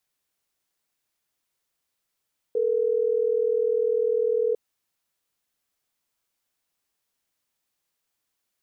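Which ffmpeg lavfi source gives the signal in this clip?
ffmpeg -f lavfi -i "aevalsrc='0.0708*(sin(2*PI*440*t)+sin(2*PI*480*t))*clip(min(mod(t,6),2-mod(t,6))/0.005,0,1)':duration=3.12:sample_rate=44100" out.wav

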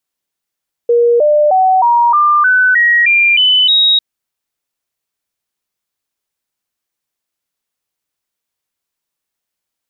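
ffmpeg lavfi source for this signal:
ffmpeg -f lavfi -i "aevalsrc='0.473*clip(min(mod(t,0.31),0.31-mod(t,0.31))/0.005,0,1)*sin(2*PI*474*pow(2,floor(t/0.31)/3)*mod(t,0.31))':duration=3.1:sample_rate=44100" out.wav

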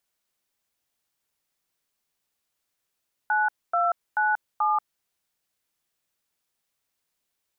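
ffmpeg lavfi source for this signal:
ffmpeg -f lavfi -i "aevalsrc='0.075*clip(min(mod(t,0.434),0.185-mod(t,0.434))/0.002,0,1)*(eq(floor(t/0.434),0)*(sin(2*PI*852*mod(t,0.434))+sin(2*PI*1477*mod(t,0.434)))+eq(floor(t/0.434),1)*(sin(2*PI*697*mod(t,0.434))+sin(2*PI*1336*mod(t,0.434)))+eq(floor(t/0.434),2)*(sin(2*PI*852*mod(t,0.434))+sin(2*PI*1477*mod(t,0.434)))+eq(floor(t/0.434),3)*(sin(2*PI*852*mod(t,0.434))+sin(2*PI*1209*mod(t,0.434))))':duration=1.736:sample_rate=44100" out.wav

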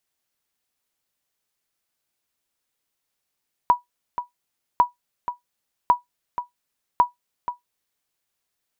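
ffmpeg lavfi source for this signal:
ffmpeg -f lavfi -i "aevalsrc='0.473*(sin(2*PI*975*mod(t,1.1))*exp(-6.91*mod(t,1.1)/0.14)+0.266*sin(2*PI*975*max(mod(t,1.1)-0.48,0))*exp(-6.91*max(mod(t,1.1)-0.48,0)/0.14))':duration=4.4:sample_rate=44100" out.wav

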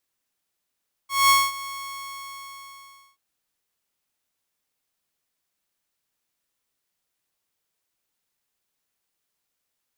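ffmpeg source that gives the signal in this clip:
ffmpeg -f lavfi -i "aevalsrc='0.299*(2*mod(1100*t,1)-1)':duration=2.08:sample_rate=44100,afade=type=in:duration=0.204,afade=type=out:start_time=0.204:duration=0.22:silence=0.119,afade=type=out:start_time=0.57:duration=1.51" out.wav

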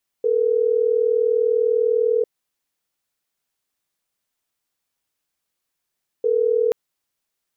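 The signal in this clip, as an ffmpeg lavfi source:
ffmpeg -f lavfi -i "aevalsrc='0.119*(sin(2*PI*440*t)+sin(2*PI*480*t))*clip(min(mod(t,6),2-mod(t,6))/0.005,0,1)':duration=6.48:sample_rate=44100" out.wav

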